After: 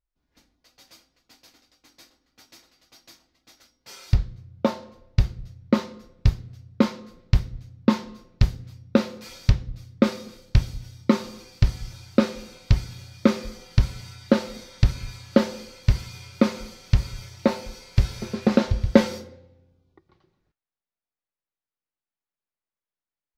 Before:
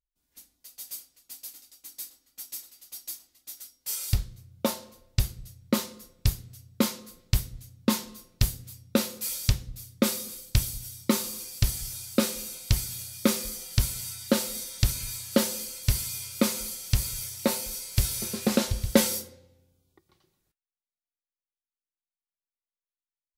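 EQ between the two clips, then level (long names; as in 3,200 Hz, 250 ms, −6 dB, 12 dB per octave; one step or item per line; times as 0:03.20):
high-frequency loss of the air 230 metres
parametric band 3,100 Hz −4 dB 0.92 octaves
+6.0 dB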